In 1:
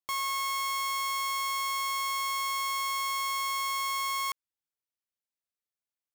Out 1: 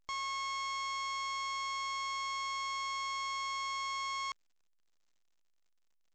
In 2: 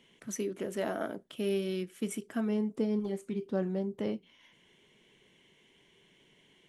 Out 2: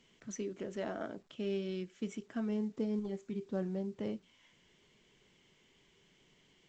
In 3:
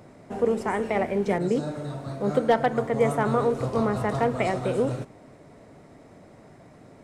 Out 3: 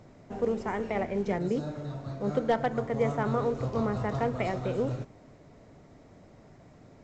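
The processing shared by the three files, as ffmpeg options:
ffmpeg -i in.wav -af "lowshelf=frequency=100:gain=10,volume=-6dB" -ar 16000 -c:a pcm_alaw out.wav

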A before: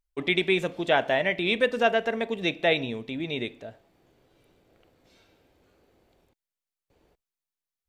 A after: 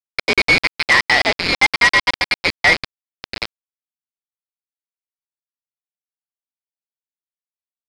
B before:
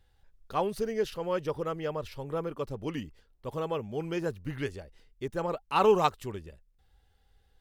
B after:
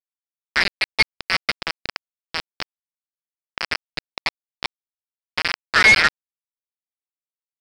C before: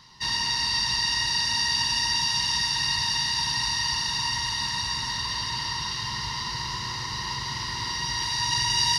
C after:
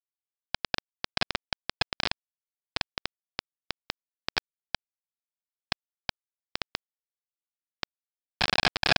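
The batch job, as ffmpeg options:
ffmpeg -i in.wav -af "lowpass=frequency=2200:width_type=q:width=0.5098,lowpass=frequency=2200:width_type=q:width=0.6013,lowpass=frequency=2200:width_type=q:width=0.9,lowpass=frequency=2200:width_type=q:width=2.563,afreqshift=-2600,aresample=11025,acrusher=bits=3:mix=0:aa=0.000001,aresample=44100,aeval=exprs='0.376*sin(PI/2*1.78*val(0)/0.376)':channel_layout=same,volume=1.5dB" out.wav

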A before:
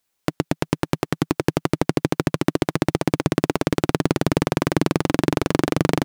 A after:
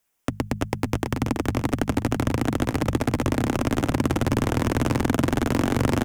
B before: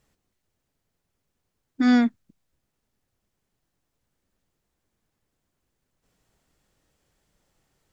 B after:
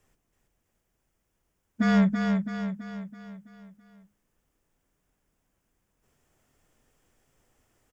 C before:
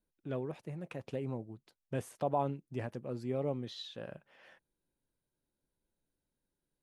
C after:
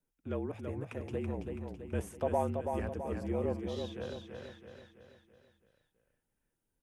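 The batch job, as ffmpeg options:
ffmpeg -i in.wav -af "equalizer=frequency=4200:width=3.2:gain=-9.5,bandreject=frequency=50:width_type=h:width=6,bandreject=frequency=100:width_type=h:width=6,bandreject=frequency=150:width_type=h:width=6,bandreject=frequency=200:width_type=h:width=6,bandreject=frequency=250:width_type=h:width=6,afreqshift=-44,asoftclip=type=tanh:threshold=-16dB,aecho=1:1:330|660|990|1320|1650|1980:0.562|0.281|0.141|0.0703|0.0351|0.0176,volume=1.5dB" out.wav

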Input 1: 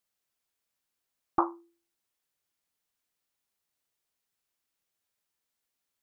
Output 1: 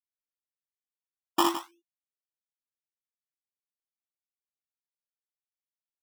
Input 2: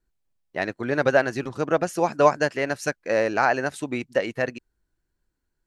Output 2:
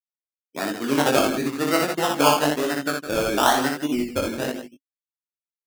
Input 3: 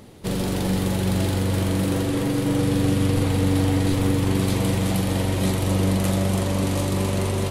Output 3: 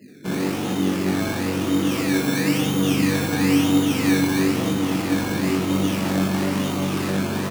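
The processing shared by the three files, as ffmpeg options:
ffmpeg -i in.wav -filter_complex "[0:a]afftfilt=real='re*gte(hypot(re,im),0.0126)':imag='im*gte(hypot(re,im),0.0126)':win_size=1024:overlap=0.75,highpass=frequency=140:width=0.5412,highpass=frequency=140:width=1.3066,equalizer=frequency=280:width_type=q:width=4:gain=8,equalizer=frequency=550:width_type=q:width=4:gain=-5,equalizer=frequency=1300:width_type=q:width=4:gain=7,equalizer=frequency=2100:width_type=q:width=4:gain=-6,lowpass=frequency=2600:width=0.5412,lowpass=frequency=2600:width=1.3066,acrusher=samples=18:mix=1:aa=0.000001:lfo=1:lforange=10.8:lforate=1,asplit=2[link_01][link_02];[link_02]aecho=0:1:61|161:0.668|0.266[link_03];[link_01][link_03]amix=inputs=2:normalize=0,flanger=delay=19.5:depth=2.5:speed=1.5,volume=2.5dB" out.wav

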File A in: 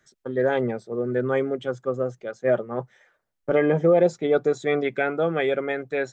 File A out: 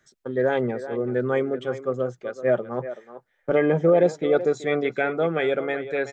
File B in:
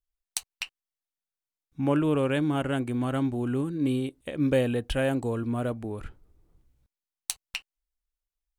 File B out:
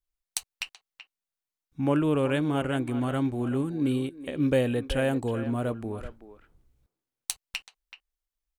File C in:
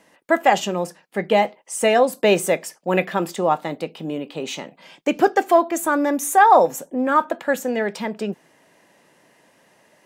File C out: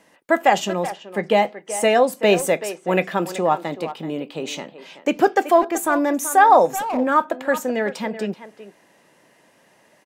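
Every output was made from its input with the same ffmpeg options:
ffmpeg -i in.wav -filter_complex "[0:a]asplit=2[link_01][link_02];[link_02]adelay=380,highpass=300,lowpass=3400,asoftclip=type=hard:threshold=-10dB,volume=-12dB[link_03];[link_01][link_03]amix=inputs=2:normalize=0" out.wav

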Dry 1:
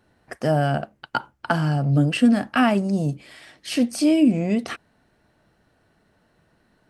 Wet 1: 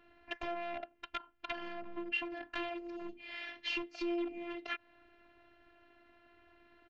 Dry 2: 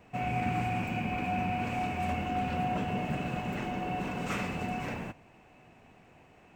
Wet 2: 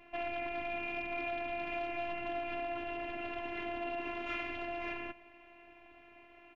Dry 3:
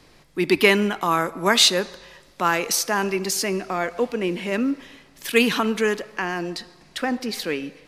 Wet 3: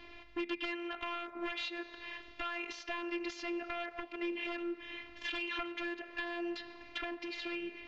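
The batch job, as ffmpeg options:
ffmpeg -i in.wav -af "acompressor=threshold=-34dB:ratio=8,aresample=16000,aeval=exprs='0.0266*(abs(mod(val(0)/0.0266+3,4)-2)-1)':channel_layout=same,aresample=44100,afftfilt=real='hypot(re,im)*cos(PI*b)':imag='0':win_size=512:overlap=0.75,lowpass=frequency=2700:width_type=q:width=2.4,volume=2dB" out.wav

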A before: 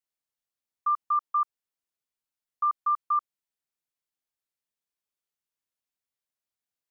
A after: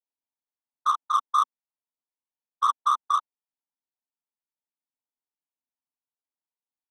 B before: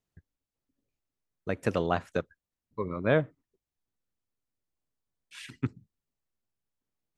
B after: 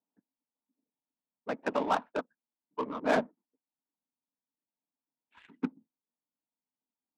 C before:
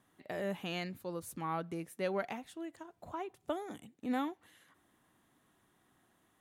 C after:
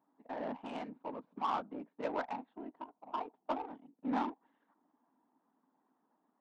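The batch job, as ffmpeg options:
ffmpeg -i in.wav -af "afftfilt=real='hypot(re,im)*cos(2*PI*random(0))':imag='hypot(re,im)*sin(2*PI*random(1))':win_size=512:overlap=0.75,highpass=frequency=250:width=0.5412,highpass=frequency=250:width=1.3066,equalizer=frequency=260:width_type=q:width=4:gain=5,equalizer=frequency=370:width_type=q:width=4:gain=-10,equalizer=frequency=530:width_type=q:width=4:gain=-5,equalizer=frequency=920:width_type=q:width=4:gain=9,equalizer=frequency=1900:width_type=q:width=4:gain=-3,equalizer=frequency=3700:width_type=q:width=4:gain=4,lowpass=frequency=3900:width=0.5412,lowpass=frequency=3900:width=1.3066,adynamicsmooth=sensitivity=7.5:basefreq=760,volume=7dB" out.wav

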